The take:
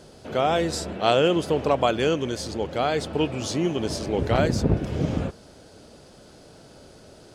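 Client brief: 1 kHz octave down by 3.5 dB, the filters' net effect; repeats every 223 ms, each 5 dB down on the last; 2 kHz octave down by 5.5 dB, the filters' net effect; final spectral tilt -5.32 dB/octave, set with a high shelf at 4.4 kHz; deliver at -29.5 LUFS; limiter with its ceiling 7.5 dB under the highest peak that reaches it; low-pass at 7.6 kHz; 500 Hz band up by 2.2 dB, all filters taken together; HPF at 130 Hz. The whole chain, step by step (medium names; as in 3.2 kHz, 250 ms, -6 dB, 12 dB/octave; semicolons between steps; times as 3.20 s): high-pass 130 Hz; low-pass 7.6 kHz; peaking EQ 500 Hz +5 dB; peaking EQ 1 kHz -8 dB; peaking EQ 2 kHz -6.5 dB; treble shelf 4.4 kHz +4.5 dB; peak limiter -14.5 dBFS; feedback delay 223 ms, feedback 56%, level -5 dB; trim -5 dB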